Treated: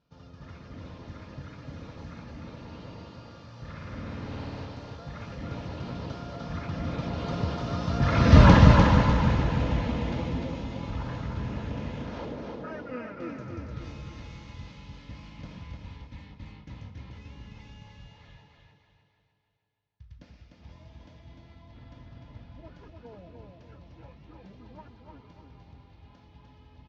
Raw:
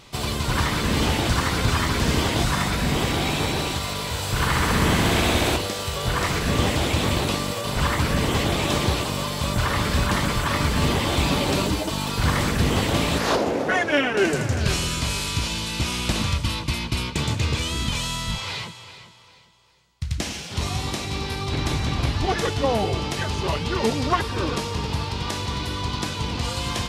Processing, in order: Doppler pass-by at 8.44 s, 56 m/s, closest 7.3 m; steep low-pass 6.3 kHz 48 dB/octave; treble shelf 2.2 kHz -11.5 dB; in parallel at -1 dB: compression, threshold -50 dBFS, peak gain reduction 27.5 dB; on the sum: bass shelf 460 Hz +3 dB; comb of notches 380 Hz; feedback delay 300 ms, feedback 38%, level -4 dB; trim +8 dB

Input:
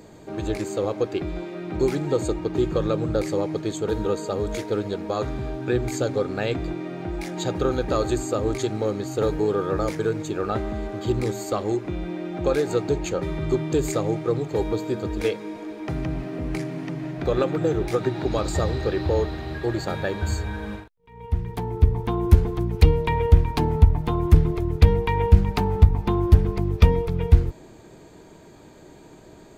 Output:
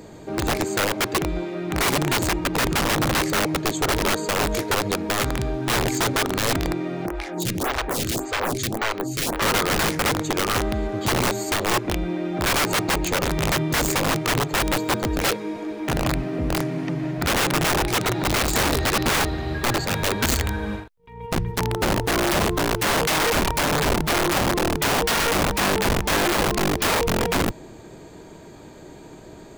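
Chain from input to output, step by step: integer overflow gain 20 dB; 7.06–9.42 s: lamp-driven phase shifter 1.8 Hz; trim +4.5 dB

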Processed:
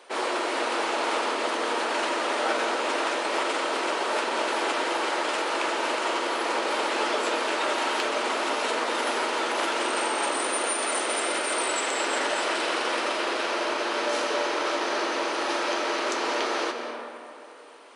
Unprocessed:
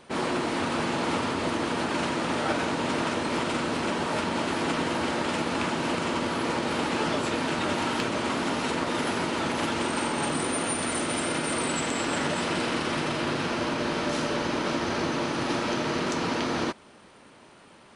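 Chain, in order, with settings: high-pass 390 Hz 24 dB/octave; on a send: reverberation RT60 2.9 s, pre-delay 110 ms, DRR 5.5 dB; on the sum: trim +2 dB

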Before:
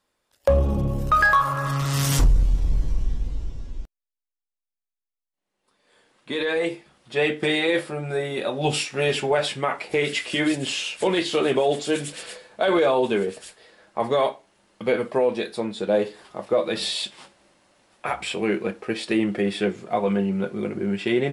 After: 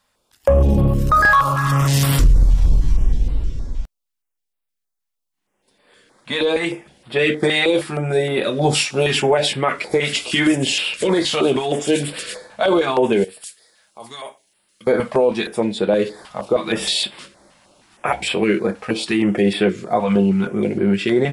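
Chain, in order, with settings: peak limiter -15 dBFS, peak gain reduction 5.5 dB; 13.24–14.87 s: pre-emphasis filter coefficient 0.9; step-sequenced notch 6.4 Hz 360–6300 Hz; trim +8.5 dB

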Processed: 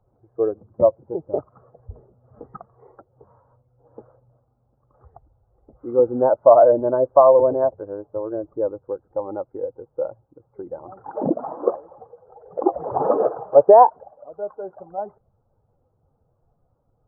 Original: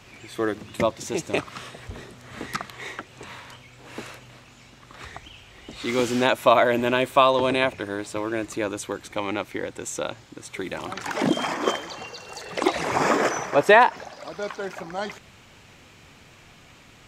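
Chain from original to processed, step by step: expander on every frequency bin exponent 1.5; Gaussian low-pass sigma 12 samples; resonant low shelf 380 Hz -12 dB, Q 1.5; loudness maximiser +15.5 dB; trim -1 dB

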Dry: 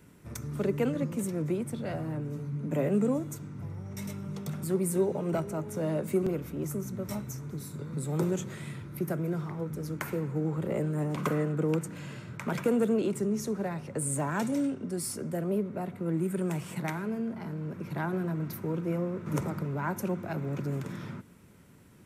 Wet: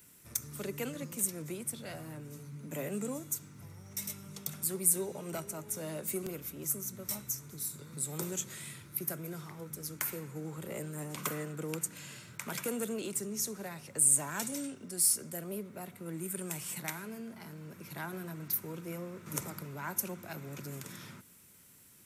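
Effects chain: pre-emphasis filter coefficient 0.9; trim +8.5 dB

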